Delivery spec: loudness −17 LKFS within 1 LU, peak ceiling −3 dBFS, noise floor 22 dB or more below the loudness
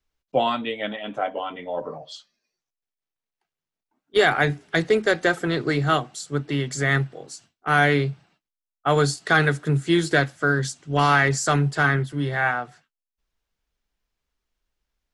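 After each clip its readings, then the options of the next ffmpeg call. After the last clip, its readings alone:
integrated loudness −22.5 LKFS; sample peak −5.5 dBFS; target loudness −17.0 LKFS
→ -af "volume=5.5dB,alimiter=limit=-3dB:level=0:latency=1"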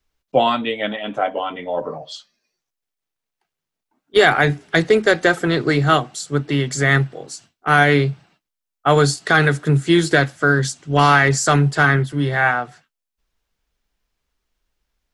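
integrated loudness −17.5 LKFS; sample peak −3.0 dBFS; background noise floor −83 dBFS

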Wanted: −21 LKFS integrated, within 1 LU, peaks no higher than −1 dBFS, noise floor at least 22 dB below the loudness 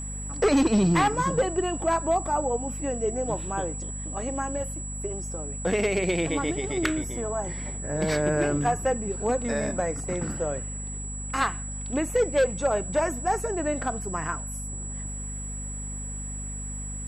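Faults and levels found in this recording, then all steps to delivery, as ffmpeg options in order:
mains hum 50 Hz; hum harmonics up to 250 Hz; level of the hum −33 dBFS; interfering tone 7,800 Hz; level of the tone −36 dBFS; integrated loudness −27.5 LKFS; sample peak −14.0 dBFS; target loudness −21.0 LKFS
→ -af "bandreject=frequency=50:width_type=h:width=4,bandreject=frequency=100:width_type=h:width=4,bandreject=frequency=150:width_type=h:width=4,bandreject=frequency=200:width_type=h:width=4,bandreject=frequency=250:width_type=h:width=4"
-af "bandreject=frequency=7800:width=30"
-af "volume=6.5dB"

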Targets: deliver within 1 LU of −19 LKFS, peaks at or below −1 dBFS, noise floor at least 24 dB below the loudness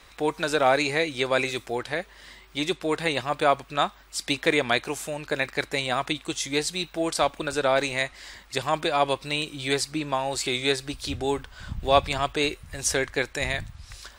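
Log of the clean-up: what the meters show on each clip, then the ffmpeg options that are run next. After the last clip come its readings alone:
integrated loudness −26.0 LKFS; sample peak −5.5 dBFS; target loudness −19.0 LKFS
→ -af "volume=7dB,alimiter=limit=-1dB:level=0:latency=1"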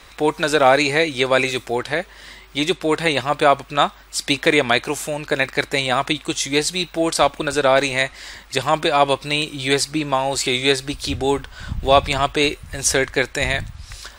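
integrated loudness −19.5 LKFS; sample peak −1.0 dBFS; background noise floor −45 dBFS

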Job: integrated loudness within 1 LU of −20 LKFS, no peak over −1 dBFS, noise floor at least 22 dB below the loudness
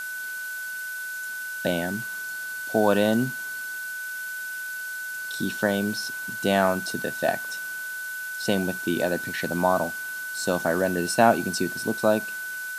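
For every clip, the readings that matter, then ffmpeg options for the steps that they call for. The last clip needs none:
interfering tone 1,500 Hz; level of the tone −31 dBFS; background noise floor −34 dBFS; target noise floor −49 dBFS; integrated loudness −26.5 LKFS; sample peak −3.5 dBFS; target loudness −20.0 LKFS
→ -af "bandreject=frequency=1500:width=30"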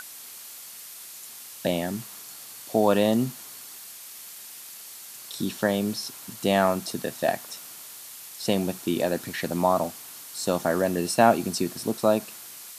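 interfering tone none found; background noise floor −43 dBFS; target noise floor −48 dBFS
→ -af "afftdn=noise_reduction=6:noise_floor=-43"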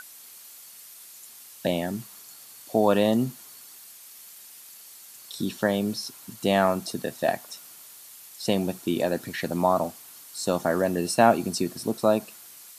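background noise floor −47 dBFS; target noise floor −48 dBFS
→ -af "afftdn=noise_reduction=6:noise_floor=-47"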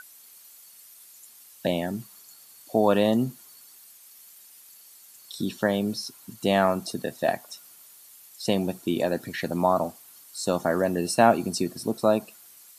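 background noise floor −51 dBFS; integrated loudness −26.0 LKFS; sample peak −4.0 dBFS; target loudness −20.0 LKFS
→ -af "volume=6dB,alimiter=limit=-1dB:level=0:latency=1"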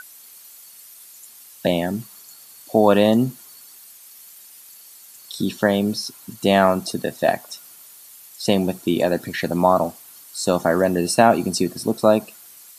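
integrated loudness −20.0 LKFS; sample peak −1.0 dBFS; background noise floor −45 dBFS

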